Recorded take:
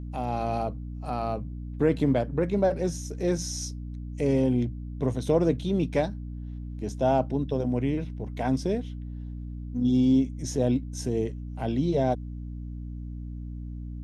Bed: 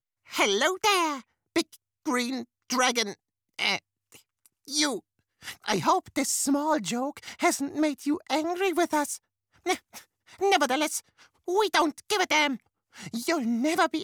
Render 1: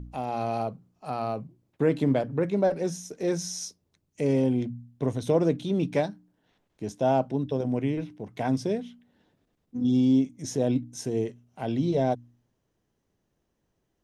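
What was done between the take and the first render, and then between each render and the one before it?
de-hum 60 Hz, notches 5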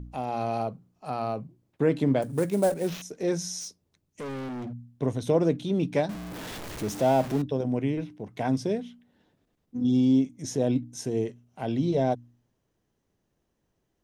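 2.22–3.02 s: sample-rate reducer 9.3 kHz, jitter 20%; 3.60–4.73 s: overload inside the chain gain 33.5 dB; 6.09–7.42 s: jump at every zero crossing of -32 dBFS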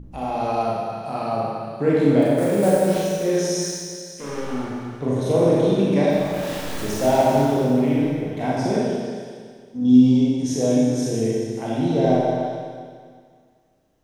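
repeats whose band climbs or falls 142 ms, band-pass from 590 Hz, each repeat 1.4 oct, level -5 dB; Schroeder reverb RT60 1.9 s, combs from 28 ms, DRR -6.5 dB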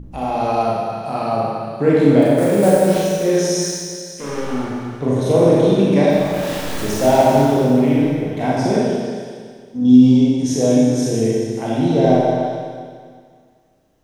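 trim +4.5 dB; peak limiter -1 dBFS, peak gain reduction 1.5 dB

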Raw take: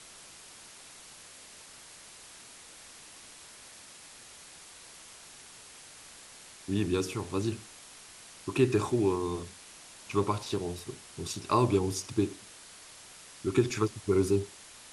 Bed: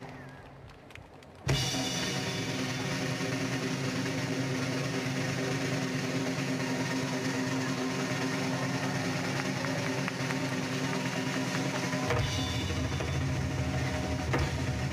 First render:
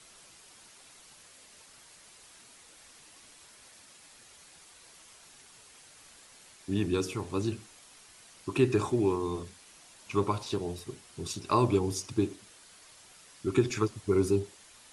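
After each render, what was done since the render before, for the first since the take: noise reduction 6 dB, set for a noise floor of -51 dBFS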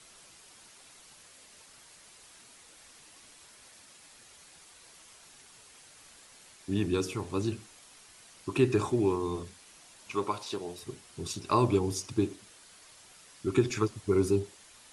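10.12–10.83 s: high-pass 420 Hz 6 dB/octave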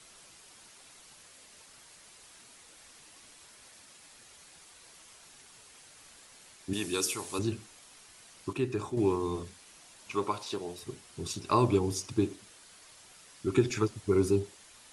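6.73–7.39 s: RIAA curve recording; 8.53–8.97 s: gain -6.5 dB; 13.56–14.01 s: band-stop 1.1 kHz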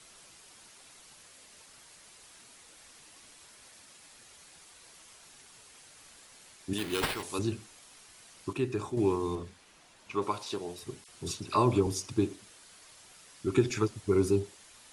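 6.78–7.23 s: sample-rate reducer 6.6 kHz; 9.35–10.22 s: treble shelf 5 kHz -10.5 dB; 11.04–11.87 s: phase dispersion lows, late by 42 ms, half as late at 1.9 kHz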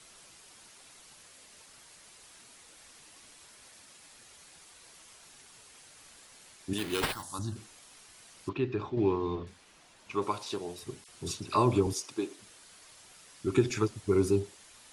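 7.12–7.56 s: static phaser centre 1 kHz, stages 4; 8.49–9.47 s: low-pass 4.2 kHz 24 dB/octave; 11.93–12.39 s: high-pass 400 Hz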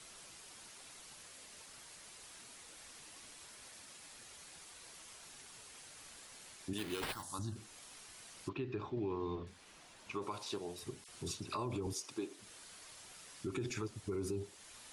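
peak limiter -24 dBFS, peak gain reduction 11 dB; compression 1.5:1, threshold -48 dBFS, peak gain reduction 7.5 dB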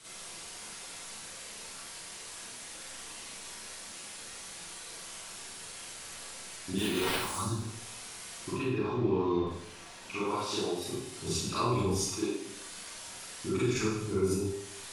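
Schroeder reverb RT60 0.74 s, combs from 33 ms, DRR -10 dB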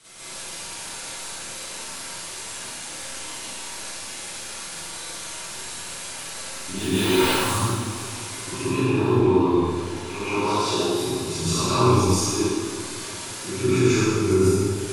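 plate-style reverb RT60 1.2 s, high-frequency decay 0.9×, pre-delay 120 ms, DRR -10 dB; modulated delay 172 ms, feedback 77%, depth 186 cents, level -16 dB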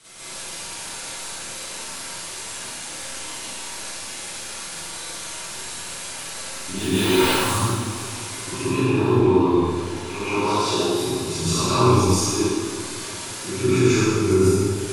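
trim +1.5 dB

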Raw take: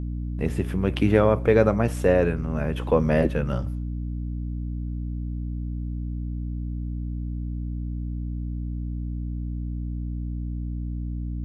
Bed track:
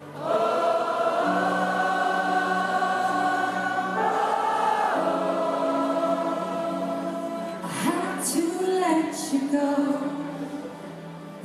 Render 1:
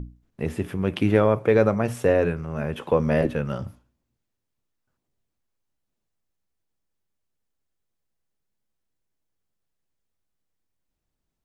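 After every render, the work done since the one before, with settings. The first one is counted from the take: hum notches 60/120/180/240/300 Hz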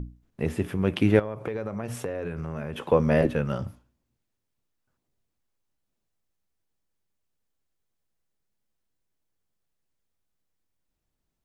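1.19–2.90 s: compression 12:1, threshold -27 dBFS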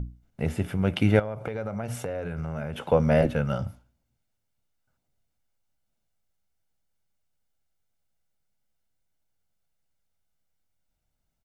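comb 1.4 ms, depth 44%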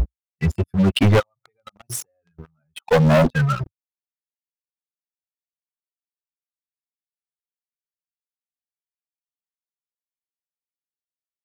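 expander on every frequency bin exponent 3; waveshaping leveller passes 5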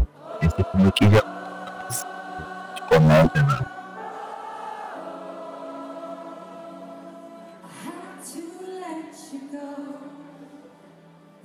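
add bed track -11.5 dB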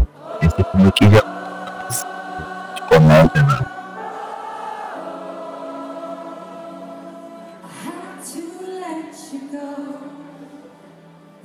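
trim +5.5 dB

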